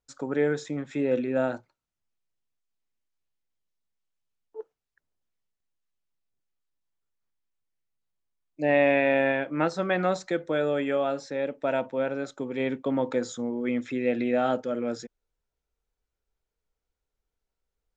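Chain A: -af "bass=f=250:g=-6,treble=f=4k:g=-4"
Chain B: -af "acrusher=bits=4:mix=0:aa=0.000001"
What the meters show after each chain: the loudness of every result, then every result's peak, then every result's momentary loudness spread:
-28.0, -26.5 LUFS; -12.0, -11.5 dBFS; 12, 10 LU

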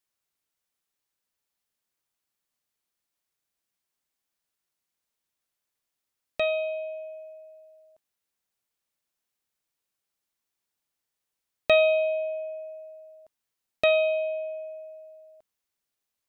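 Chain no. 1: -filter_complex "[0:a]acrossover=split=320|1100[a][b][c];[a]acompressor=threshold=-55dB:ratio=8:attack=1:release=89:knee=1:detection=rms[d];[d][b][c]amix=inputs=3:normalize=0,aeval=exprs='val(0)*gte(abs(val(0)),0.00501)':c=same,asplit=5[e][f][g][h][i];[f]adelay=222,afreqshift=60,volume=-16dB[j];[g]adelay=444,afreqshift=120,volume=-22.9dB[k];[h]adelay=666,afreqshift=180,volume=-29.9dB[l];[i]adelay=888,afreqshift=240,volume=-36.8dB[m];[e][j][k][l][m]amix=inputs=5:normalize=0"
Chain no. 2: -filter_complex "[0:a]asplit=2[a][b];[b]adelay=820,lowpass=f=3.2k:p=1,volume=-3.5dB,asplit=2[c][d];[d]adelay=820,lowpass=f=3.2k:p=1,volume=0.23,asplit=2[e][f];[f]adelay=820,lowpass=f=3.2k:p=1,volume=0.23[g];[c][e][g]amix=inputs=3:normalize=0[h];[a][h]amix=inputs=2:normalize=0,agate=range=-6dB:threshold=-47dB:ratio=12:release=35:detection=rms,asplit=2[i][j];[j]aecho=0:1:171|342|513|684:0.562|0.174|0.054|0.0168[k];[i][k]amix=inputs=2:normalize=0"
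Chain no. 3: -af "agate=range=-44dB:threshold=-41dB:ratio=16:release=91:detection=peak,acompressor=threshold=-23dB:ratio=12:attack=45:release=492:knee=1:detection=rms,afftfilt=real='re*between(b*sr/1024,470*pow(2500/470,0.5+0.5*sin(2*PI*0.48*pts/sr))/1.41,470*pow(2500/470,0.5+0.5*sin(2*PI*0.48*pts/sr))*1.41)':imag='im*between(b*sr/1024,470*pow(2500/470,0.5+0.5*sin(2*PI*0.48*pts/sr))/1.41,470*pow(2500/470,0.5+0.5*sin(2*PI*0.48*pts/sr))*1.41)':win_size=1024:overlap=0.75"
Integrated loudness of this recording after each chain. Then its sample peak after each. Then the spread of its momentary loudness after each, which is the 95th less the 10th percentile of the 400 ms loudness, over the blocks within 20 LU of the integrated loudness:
-26.5, -26.0, -30.5 LUFS; -10.5, -10.5, -14.0 dBFS; 22, 20, 14 LU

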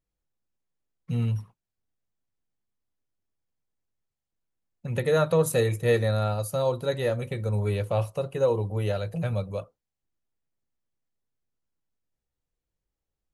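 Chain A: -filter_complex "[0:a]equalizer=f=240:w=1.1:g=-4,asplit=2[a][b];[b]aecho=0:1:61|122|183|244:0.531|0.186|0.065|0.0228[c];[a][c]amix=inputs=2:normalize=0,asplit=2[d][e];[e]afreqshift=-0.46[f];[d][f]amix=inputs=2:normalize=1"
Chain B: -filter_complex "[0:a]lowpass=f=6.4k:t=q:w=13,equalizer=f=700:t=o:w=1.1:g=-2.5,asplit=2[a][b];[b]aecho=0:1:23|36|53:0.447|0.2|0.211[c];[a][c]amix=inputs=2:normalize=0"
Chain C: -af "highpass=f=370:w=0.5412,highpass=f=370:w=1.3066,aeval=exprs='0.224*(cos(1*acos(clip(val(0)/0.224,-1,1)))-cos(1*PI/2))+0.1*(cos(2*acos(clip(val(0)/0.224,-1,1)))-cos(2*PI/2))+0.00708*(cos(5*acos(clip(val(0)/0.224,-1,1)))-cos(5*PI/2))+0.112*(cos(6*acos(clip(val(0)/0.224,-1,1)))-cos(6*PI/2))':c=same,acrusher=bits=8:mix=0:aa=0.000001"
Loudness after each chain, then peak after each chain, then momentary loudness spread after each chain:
-29.5, -26.0, -24.0 LUFS; -12.0, -9.0, -4.5 dBFS; 14, 11, 13 LU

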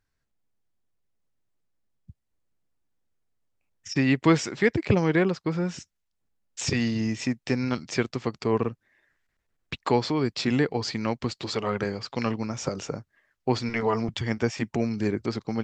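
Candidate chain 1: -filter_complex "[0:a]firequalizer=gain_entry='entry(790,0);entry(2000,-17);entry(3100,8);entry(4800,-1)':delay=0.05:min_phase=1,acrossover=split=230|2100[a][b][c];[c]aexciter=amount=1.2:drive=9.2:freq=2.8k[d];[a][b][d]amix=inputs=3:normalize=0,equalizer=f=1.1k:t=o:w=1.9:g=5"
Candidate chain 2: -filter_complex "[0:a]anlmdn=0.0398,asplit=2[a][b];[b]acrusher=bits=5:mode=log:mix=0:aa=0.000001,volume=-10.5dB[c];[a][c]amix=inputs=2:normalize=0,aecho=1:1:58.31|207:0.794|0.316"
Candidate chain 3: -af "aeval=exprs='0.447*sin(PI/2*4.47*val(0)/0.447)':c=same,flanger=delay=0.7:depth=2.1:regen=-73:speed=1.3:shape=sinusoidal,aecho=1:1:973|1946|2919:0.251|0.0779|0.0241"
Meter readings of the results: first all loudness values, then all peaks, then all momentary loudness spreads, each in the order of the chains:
-25.5, -22.5, -19.0 LUFS; -5.0, -4.5, -7.0 dBFS; 9, 11, 11 LU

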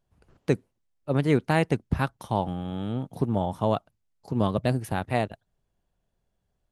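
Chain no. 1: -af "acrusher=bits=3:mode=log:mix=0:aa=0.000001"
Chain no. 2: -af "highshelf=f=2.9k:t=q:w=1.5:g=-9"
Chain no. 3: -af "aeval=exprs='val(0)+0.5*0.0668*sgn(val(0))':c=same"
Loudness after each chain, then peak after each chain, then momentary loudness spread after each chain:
-27.5, -27.5, -25.0 LUFS; -7.0, -8.0, -7.5 dBFS; 9, 9, 11 LU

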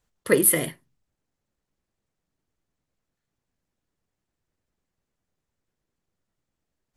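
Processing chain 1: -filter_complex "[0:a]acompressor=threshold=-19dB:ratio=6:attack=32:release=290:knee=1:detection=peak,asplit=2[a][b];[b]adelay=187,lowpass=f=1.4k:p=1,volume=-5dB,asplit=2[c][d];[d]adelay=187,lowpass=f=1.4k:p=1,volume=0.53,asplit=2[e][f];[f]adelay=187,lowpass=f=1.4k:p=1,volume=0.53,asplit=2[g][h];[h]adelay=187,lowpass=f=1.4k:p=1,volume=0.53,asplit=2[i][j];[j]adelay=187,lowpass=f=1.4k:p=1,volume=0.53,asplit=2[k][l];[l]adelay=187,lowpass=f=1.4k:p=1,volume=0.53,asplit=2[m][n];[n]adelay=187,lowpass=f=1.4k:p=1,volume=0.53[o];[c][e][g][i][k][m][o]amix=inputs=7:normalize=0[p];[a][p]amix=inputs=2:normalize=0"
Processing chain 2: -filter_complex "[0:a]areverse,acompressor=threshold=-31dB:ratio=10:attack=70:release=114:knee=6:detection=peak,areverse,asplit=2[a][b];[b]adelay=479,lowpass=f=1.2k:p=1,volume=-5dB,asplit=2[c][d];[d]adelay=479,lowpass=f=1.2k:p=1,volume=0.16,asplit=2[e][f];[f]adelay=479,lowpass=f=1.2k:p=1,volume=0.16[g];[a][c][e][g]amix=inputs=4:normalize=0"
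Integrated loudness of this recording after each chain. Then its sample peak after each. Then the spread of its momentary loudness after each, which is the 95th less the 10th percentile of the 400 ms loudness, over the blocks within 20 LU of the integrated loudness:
-23.5, -31.5 LUFS; -8.0, -15.0 dBFS; 18, 12 LU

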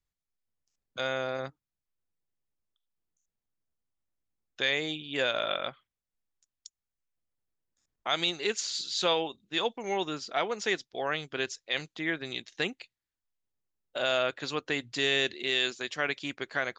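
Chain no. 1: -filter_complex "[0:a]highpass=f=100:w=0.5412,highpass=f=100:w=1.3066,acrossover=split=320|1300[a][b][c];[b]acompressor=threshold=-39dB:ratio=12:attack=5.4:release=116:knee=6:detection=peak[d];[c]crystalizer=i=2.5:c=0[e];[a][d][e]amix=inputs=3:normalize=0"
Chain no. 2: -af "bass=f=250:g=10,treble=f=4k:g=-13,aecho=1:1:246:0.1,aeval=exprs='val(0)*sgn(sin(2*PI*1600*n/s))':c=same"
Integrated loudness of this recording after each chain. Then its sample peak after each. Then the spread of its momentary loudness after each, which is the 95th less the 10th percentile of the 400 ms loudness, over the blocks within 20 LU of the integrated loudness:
-28.0, -30.0 LUFS; -10.5, -15.0 dBFS; 15, 8 LU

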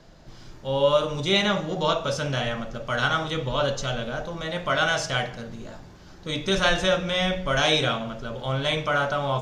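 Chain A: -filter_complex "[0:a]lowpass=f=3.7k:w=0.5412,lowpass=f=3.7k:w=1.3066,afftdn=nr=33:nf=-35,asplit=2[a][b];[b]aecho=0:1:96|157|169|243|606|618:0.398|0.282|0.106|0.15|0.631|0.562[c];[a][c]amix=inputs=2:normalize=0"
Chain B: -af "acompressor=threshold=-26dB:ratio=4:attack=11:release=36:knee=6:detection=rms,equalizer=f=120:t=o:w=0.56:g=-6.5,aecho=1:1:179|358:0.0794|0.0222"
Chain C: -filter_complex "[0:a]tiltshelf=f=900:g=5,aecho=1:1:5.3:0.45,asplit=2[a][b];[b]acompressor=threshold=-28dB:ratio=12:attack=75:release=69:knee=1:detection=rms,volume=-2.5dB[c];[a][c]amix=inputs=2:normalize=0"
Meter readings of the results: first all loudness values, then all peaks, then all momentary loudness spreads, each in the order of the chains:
-22.5, -29.0, -20.0 LUFS; -7.5, -14.0, -4.0 dBFS; 7, 9, 10 LU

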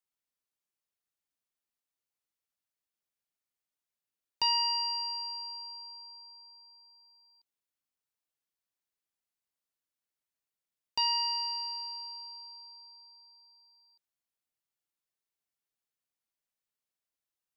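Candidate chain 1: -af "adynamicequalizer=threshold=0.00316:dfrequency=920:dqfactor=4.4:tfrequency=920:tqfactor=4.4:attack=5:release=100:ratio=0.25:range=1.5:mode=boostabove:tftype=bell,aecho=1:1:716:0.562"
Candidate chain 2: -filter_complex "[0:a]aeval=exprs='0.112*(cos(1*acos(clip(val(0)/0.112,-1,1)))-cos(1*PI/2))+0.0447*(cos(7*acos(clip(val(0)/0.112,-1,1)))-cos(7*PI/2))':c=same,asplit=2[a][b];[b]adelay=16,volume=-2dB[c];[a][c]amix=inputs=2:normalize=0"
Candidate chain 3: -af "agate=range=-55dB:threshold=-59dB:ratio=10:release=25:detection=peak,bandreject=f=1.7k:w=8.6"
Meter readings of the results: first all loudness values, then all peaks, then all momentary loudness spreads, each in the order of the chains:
-30.0, -28.5, -31.0 LUFS; -19.0, -17.5, -19.0 dBFS; 20, 21, 20 LU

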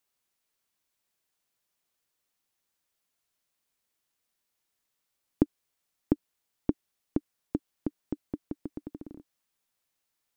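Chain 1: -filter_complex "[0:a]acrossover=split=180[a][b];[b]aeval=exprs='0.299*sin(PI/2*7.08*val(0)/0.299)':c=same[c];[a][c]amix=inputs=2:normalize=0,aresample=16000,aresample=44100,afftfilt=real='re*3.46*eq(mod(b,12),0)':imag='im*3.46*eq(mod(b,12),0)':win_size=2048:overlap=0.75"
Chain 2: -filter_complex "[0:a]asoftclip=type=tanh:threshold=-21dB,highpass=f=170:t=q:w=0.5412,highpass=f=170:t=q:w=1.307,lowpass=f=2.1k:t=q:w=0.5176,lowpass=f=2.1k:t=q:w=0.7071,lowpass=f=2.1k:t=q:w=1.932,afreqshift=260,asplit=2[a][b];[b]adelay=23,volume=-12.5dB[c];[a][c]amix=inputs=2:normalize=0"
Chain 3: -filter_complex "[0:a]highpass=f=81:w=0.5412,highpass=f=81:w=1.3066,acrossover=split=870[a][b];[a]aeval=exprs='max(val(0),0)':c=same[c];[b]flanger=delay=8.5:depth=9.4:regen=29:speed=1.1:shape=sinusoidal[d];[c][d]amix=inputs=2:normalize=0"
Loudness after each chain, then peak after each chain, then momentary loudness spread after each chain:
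-29.5, -41.0, -41.0 LUFS; -11.0, -17.5, -10.0 dBFS; 6, 7, 14 LU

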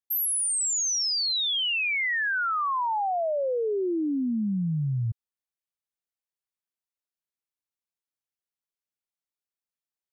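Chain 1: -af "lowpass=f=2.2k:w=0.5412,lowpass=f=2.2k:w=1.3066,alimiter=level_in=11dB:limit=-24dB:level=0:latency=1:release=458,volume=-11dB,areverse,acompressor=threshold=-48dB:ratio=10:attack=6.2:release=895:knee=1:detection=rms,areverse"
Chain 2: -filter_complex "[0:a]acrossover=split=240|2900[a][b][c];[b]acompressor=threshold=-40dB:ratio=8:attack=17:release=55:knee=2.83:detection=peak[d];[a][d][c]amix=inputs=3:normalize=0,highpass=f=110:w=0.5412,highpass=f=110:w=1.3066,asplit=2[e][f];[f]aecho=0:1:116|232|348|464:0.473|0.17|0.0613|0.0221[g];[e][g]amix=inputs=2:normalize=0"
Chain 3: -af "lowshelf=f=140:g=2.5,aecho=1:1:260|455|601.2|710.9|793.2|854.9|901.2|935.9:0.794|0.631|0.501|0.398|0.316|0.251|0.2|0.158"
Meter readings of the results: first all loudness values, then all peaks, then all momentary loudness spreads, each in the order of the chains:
-50.0, -26.0, -21.5 LUFS; -43.0, -19.0, -11.0 dBFS; 10, 16, 7 LU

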